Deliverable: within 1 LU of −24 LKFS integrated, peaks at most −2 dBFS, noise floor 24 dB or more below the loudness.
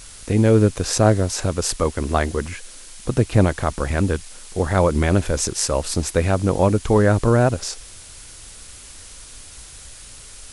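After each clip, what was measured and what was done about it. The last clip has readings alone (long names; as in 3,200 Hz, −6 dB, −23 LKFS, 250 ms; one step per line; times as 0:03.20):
background noise floor −41 dBFS; target noise floor −44 dBFS; integrated loudness −19.5 LKFS; sample peak −1.5 dBFS; target loudness −24.0 LKFS
→ noise reduction from a noise print 6 dB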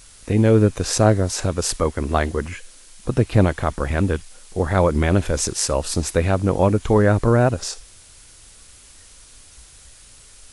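background noise floor −47 dBFS; integrated loudness −20.0 LKFS; sample peak −1.5 dBFS; target loudness −24.0 LKFS
→ level −4 dB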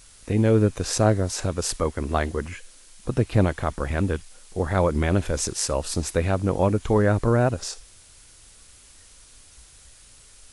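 integrated loudness −24.0 LKFS; sample peak −5.5 dBFS; background noise floor −51 dBFS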